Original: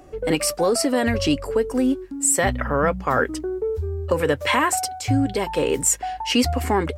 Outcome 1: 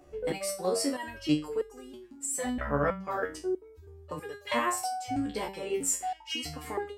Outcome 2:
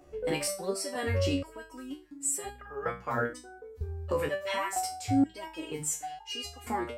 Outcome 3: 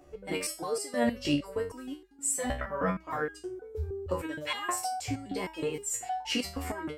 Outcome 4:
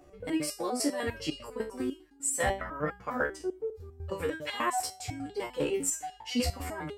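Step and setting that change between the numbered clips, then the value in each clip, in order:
resonator arpeggio, rate: 3.1 Hz, 2.1 Hz, 6.4 Hz, 10 Hz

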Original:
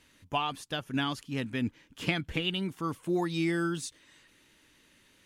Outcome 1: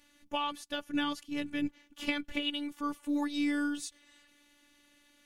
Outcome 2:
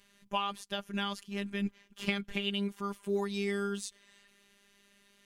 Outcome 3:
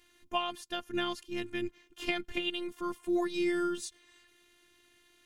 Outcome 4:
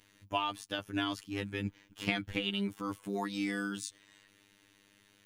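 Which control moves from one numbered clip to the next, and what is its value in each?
robot voice, frequency: 290 Hz, 200 Hz, 350 Hz, 100 Hz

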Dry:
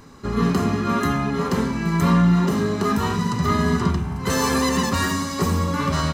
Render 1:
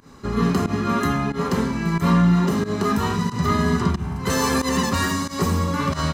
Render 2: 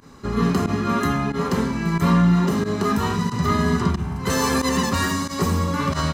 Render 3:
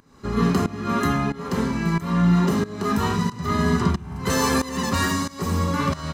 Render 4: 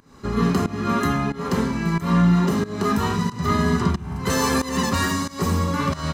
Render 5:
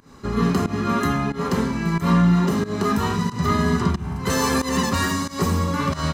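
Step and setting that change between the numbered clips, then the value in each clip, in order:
volume shaper, release: 106 ms, 62 ms, 478 ms, 279 ms, 163 ms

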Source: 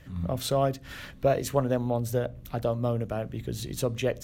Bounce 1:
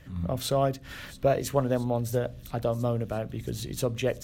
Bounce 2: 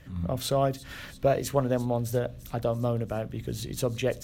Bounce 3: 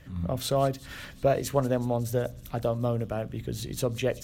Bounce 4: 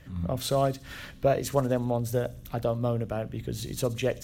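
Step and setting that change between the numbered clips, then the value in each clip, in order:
feedback echo behind a high-pass, time: 672 ms, 340 ms, 185 ms, 61 ms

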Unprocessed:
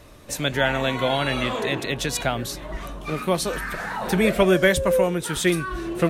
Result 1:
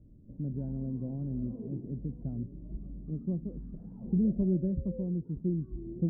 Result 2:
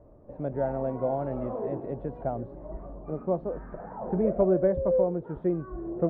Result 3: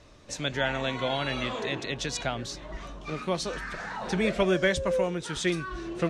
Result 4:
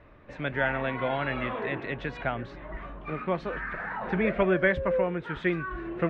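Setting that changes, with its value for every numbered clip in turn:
four-pole ladder low-pass, frequency: 290 Hz, 850 Hz, 7.6 kHz, 2.5 kHz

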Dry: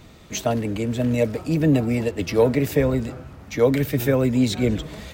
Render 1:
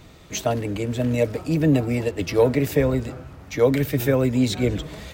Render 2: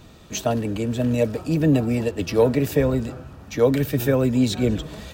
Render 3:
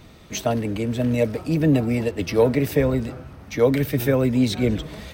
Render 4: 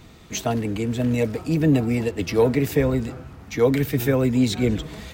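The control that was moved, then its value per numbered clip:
band-stop, frequency: 220 Hz, 2.1 kHz, 7.1 kHz, 580 Hz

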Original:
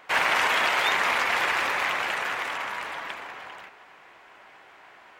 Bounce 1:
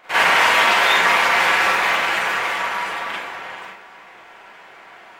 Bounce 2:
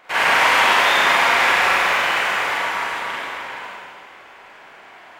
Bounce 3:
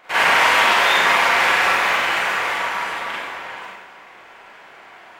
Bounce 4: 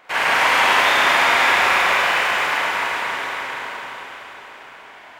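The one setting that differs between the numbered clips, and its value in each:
Schroeder reverb, RT60: 0.35 s, 1.9 s, 0.81 s, 4.5 s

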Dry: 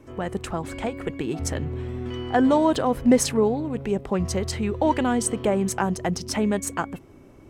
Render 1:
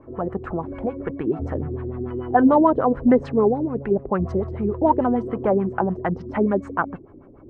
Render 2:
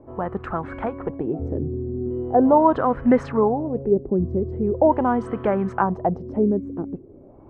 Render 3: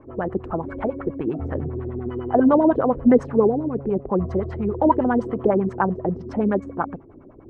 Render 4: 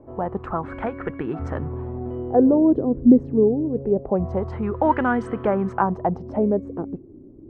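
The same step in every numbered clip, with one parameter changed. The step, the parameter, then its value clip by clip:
LFO low-pass, rate: 6.8 Hz, 0.41 Hz, 10 Hz, 0.24 Hz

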